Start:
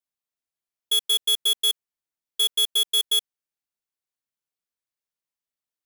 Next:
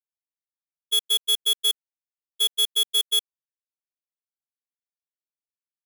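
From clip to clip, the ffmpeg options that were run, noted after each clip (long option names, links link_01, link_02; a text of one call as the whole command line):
ffmpeg -i in.wav -af "agate=range=-26dB:threshold=-22dB:ratio=16:detection=peak,volume=3dB" out.wav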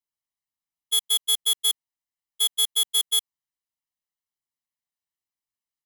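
ffmpeg -i in.wav -af "aecho=1:1:1:0.7" out.wav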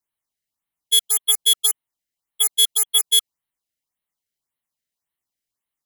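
ffmpeg -i in.wav -af "afftfilt=real='re*(1-between(b*sr/1024,910*pow(6300/910,0.5+0.5*sin(2*PI*1.8*pts/sr))/1.41,910*pow(6300/910,0.5+0.5*sin(2*PI*1.8*pts/sr))*1.41))':imag='im*(1-between(b*sr/1024,910*pow(6300/910,0.5+0.5*sin(2*PI*1.8*pts/sr))/1.41,910*pow(6300/910,0.5+0.5*sin(2*PI*1.8*pts/sr))*1.41))':win_size=1024:overlap=0.75,volume=6.5dB" out.wav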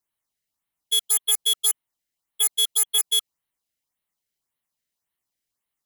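ffmpeg -i in.wav -af "asoftclip=type=tanh:threshold=-16.5dB,volume=1.5dB" out.wav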